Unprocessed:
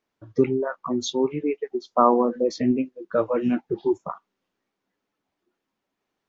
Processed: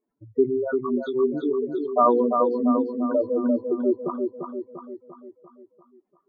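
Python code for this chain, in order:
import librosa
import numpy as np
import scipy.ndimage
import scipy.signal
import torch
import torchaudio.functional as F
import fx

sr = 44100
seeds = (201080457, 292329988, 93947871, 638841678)

p1 = fx.spec_expand(x, sr, power=3.1)
p2 = scipy.signal.sosfilt(scipy.signal.butter(4, 2300.0, 'lowpass', fs=sr, output='sos'), p1)
y = p2 + fx.echo_feedback(p2, sr, ms=345, feedback_pct=52, wet_db=-5, dry=0)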